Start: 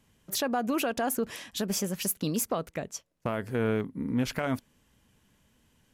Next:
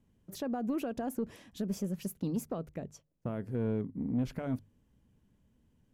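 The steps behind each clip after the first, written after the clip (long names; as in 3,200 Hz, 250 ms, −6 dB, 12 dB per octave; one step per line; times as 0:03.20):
tilt shelving filter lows +8.5 dB, about 640 Hz
soft clipping −14.5 dBFS, distortion −21 dB
mains-hum notches 50/100/150 Hz
level −8 dB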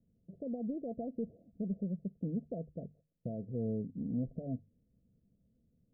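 Chebyshev low-pass with heavy ripple 700 Hz, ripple 6 dB
level −1 dB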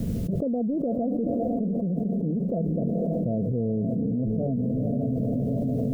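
feedback delay with all-pass diffusion 487 ms, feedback 45%, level −8.5 dB
envelope flattener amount 100%
level +5.5 dB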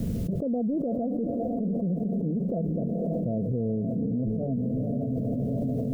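brickwall limiter −21 dBFS, peak gain reduction 5.5 dB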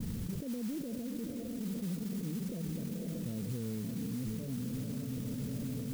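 moving average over 56 samples
noise that follows the level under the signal 15 dB
level −8.5 dB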